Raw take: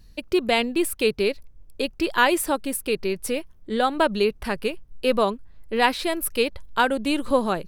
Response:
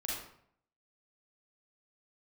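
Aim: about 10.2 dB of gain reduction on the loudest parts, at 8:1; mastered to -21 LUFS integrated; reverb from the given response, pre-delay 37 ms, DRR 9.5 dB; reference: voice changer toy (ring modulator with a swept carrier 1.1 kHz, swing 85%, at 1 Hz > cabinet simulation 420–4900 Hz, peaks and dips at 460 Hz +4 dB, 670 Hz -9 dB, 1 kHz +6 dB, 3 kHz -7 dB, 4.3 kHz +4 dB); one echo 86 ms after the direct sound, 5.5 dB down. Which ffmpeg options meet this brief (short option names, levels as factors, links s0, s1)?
-filter_complex "[0:a]acompressor=threshold=0.0562:ratio=8,aecho=1:1:86:0.531,asplit=2[s0][s1];[1:a]atrim=start_sample=2205,adelay=37[s2];[s1][s2]afir=irnorm=-1:irlink=0,volume=0.251[s3];[s0][s3]amix=inputs=2:normalize=0,aeval=exprs='val(0)*sin(2*PI*1100*n/s+1100*0.85/1*sin(2*PI*1*n/s))':c=same,highpass=420,equalizer=f=460:t=q:w=4:g=4,equalizer=f=670:t=q:w=4:g=-9,equalizer=f=1000:t=q:w=4:g=6,equalizer=f=3000:t=q:w=4:g=-7,equalizer=f=4300:t=q:w=4:g=4,lowpass=f=4900:w=0.5412,lowpass=f=4900:w=1.3066,volume=3.35"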